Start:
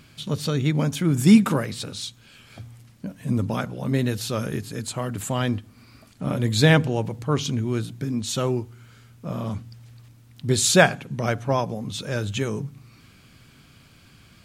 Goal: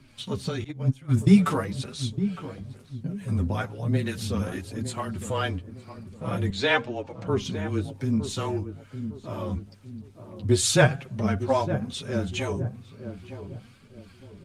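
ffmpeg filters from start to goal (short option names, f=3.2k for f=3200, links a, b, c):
-filter_complex "[0:a]afreqshift=-18,flanger=delay=7.1:depth=4.4:regen=17:speed=1:shape=triangular,asettb=1/sr,asplit=3[a][b][c];[a]atrim=end=6.504[d];[b]atrim=start=6.5:end=7.27,asetpts=PTS-STARTPTS,afade=t=in:d=0.004:c=qsin,afade=t=out:st=0.766:d=0.004:c=qsin,acrossover=split=340 6700:gain=0.224 1 0.0891[e][f][g];[e][f][g]amix=inputs=3:normalize=0[h];[c]atrim=start=7.266[i];[d][h]acrossfade=d=0.004:c1=hsin:c2=qsin[j];[j][i]acrossfade=d=0.004:c1=qsin:c2=hsin,flanger=delay=3:depth=5.3:regen=30:speed=0.43:shape=triangular,asettb=1/sr,asplit=3[k][l][m];[k]atrim=end=0.644[n];[l]atrim=start=0.64:end=1.34,asetpts=PTS-STARTPTS,afade=t=in:d=0.004:c=qsin,afade=t=out:st=0.696:d=0.004:c=qsin,agate=range=-18dB:threshold=-24dB:ratio=16:detection=peak[o];[m]atrim=start=1.336[p];[n][o]acrossfade=d=0.004:c1=hsin:c2=qsin[q];[q][p]acrossfade=d=0.004:c1=qsin:c2=hsin,lowpass=10k,asettb=1/sr,asplit=3[r][s][t];[r]atrim=end=10.684[u];[s]atrim=start=10.68:end=11.23,asetpts=PTS-STARTPTS,afade=t=in:d=0.004:c=qsin,afade=t=out:st=0.546:d=0.004:c=qsin,lowshelf=f=120:g=4[v];[t]atrim=start=11.226[w];[u][v]acrossfade=d=0.004:c1=hsin:c2=qsin[x];[x][w]acrossfade=d=0.004:c1=qsin:c2=hsin,asplit=2[y][z];[z]adelay=909,lowpass=f=820:p=1,volume=-9.5dB,asplit=2[aa][ab];[ab]adelay=909,lowpass=f=820:p=1,volume=0.4,asplit=2[ac][ad];[ad]adelay=909,lowpass=f=820:p=1,volume=0.4,asplit=2[ae][af];[af]adelay=909,lowpass=f=820:p=1,volume=0.4[ag];[y][aa][ac][ae][ag]amix=inputs=5:normalize=0,acrossover=split=450[ah][ai];[ah]aeval=exprs='val(0)*(1-0.5/2+0.5/2*cos(2*PI*2.3*n/s))':c=same[aj];[ai]aeval=exprs='val(0)*(1-0.5/2-0.5/2*cos(2*PI*2.3*n/s))':c=same[ak];[aj][ak]amix=inputs=2:normalize=0,volume=7.5dB" -ar 48000 -c:a libopus -b:a 32k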